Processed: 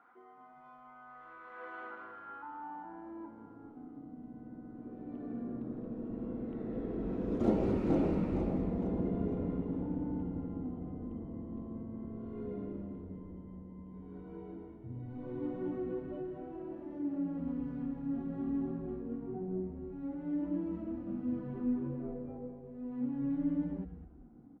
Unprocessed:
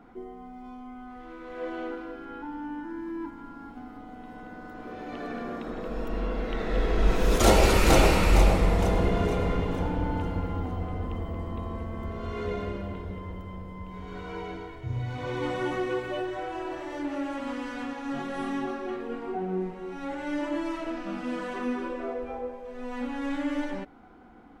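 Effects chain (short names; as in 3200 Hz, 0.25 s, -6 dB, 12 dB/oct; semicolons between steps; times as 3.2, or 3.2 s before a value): band-pass sweep 1300 Hz -> 250 Hz, 2.25–4.23; frequency-shifting echo 0.202 s, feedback 38%, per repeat -110 Hz, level -10.5 dB; gain -1 dB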